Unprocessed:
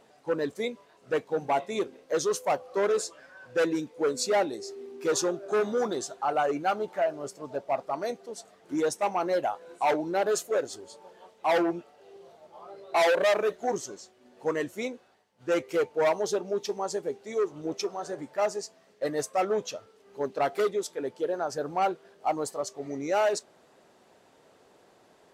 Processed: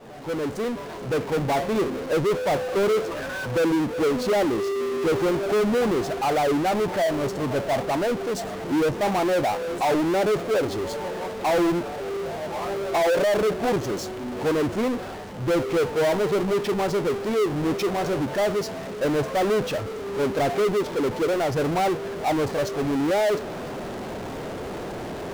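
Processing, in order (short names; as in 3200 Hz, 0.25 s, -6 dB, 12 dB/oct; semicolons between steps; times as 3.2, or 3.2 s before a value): opening faded in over 1.98 s; tilt -3.5 dB/oct; treble ducked by the level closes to 1100 Hz, closed at -20 dBFS; power-law curve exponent 0.35; gain -2.5 dB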